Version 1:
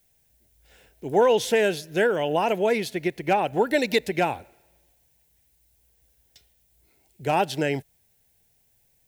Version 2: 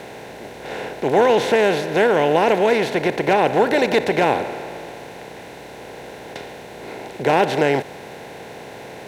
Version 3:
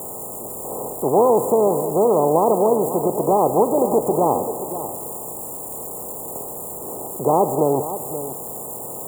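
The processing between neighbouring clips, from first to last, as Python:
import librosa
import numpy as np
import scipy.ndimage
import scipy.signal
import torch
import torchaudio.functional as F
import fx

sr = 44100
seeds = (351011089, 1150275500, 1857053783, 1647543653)

y1 = fx.bin_compress(x, sr, power=0.4)
y1 = fx.high_shelf(y1, sr, hz=5200.0, db=-11.0)
y1 = y1 * 10.0 ** (1.0 / 20.0)
y2 = y1 + 0.5 * 10.0 ** (-20.5 / 20.0) * np.diff(np.sign(y1), prepend=np.sign(y1[:1]))
y2 = fx.brickwall_bandstop(y2, sr, low_hz=1300.0, high_hz=6800.0)
y2 = y2 + 10.0 ** (-12.0 / 20.0) * np.pad(y2, (int(530 * sr / 1000.0), 0))[:len(y2)]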